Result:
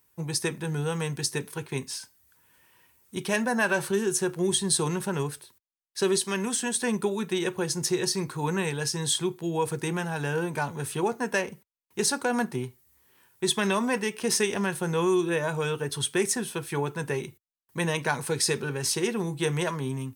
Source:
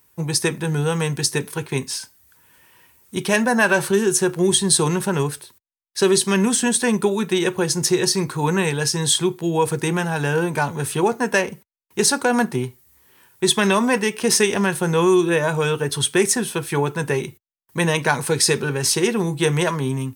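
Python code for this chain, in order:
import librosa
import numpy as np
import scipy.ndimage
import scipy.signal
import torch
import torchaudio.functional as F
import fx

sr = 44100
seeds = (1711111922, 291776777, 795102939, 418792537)

y = fx.highpass(x, sr, hz=290.0, slope=6, at=(6.17, 6.81))
y = y * 10.0 ** (-8.0 / 20.0)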